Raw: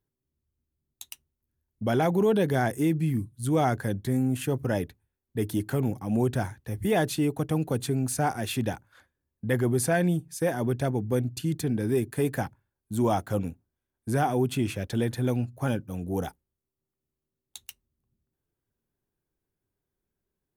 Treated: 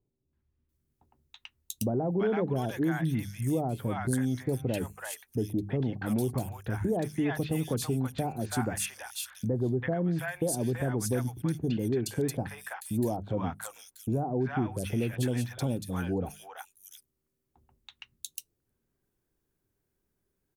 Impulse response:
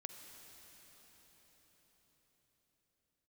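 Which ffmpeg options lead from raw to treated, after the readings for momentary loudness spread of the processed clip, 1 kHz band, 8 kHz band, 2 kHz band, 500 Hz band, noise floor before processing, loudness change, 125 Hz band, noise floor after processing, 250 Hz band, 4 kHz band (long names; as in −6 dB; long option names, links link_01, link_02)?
11 LU, −6.5 dB, −0.5 dB, −4.0 dB, −4.5 dB, below −85 dBFS, −3.5 dB, −3.0 dB, −81 dBFS, −3.0 dB, −3.0 dB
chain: -filter_complex "[0:a]bandreject=frequency=50:width_type=h:width=6,bandreject=frequency=100:width_type=h:width=6,bandreject=frequency=150:width_type=h:width=6,bandreject=frequency=200:width_type=h:width=6,acompressor=threshold=-34dB:ratio=2.5,acrossover=split=810|3300[link_01][link_02][link_03];[link_02]adelay=330[link_04];[link_03]adelay=690[link_05];[link_01][link_04][link_05]amix=inputs=3:normalize=0,volume=5dB"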